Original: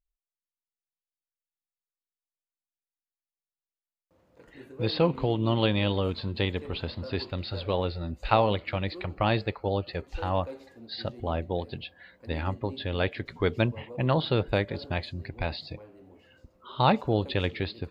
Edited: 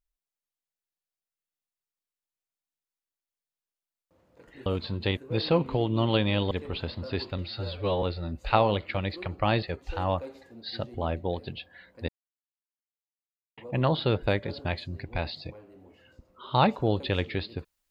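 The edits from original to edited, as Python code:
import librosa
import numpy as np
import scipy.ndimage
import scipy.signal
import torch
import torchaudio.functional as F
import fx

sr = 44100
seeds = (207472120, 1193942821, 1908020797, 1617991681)

y = fx.edit(x, sr, fx.move(start_s=6.0, length_s=0.51, to_s=4.66),
    fx.stretch_span(start_s=7.38, length_s=0.43, factor=1.5),
    fx.cut(start_s=9.41, length_s=0.47),
    fx.silence(start_s=12.34, length_s=1.49), tone=tone)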